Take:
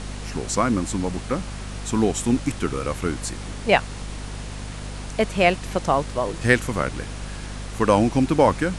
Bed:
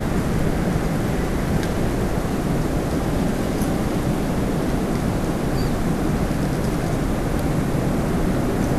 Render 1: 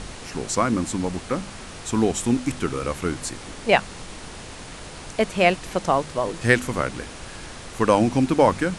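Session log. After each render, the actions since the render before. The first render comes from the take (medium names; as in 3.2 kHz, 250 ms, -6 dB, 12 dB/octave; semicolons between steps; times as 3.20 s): de-hum 50 Hz, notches 5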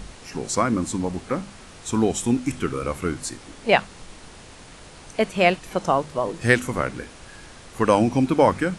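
noise print and reduce 6 dB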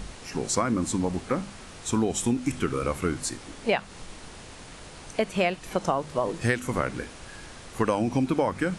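compression 10:1, threshold -20 dBFS, peak gain reduction 10 dB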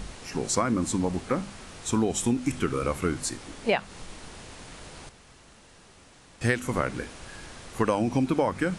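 5.09–6.41 s: room tone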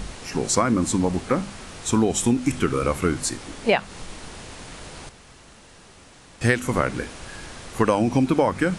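trim +5 dB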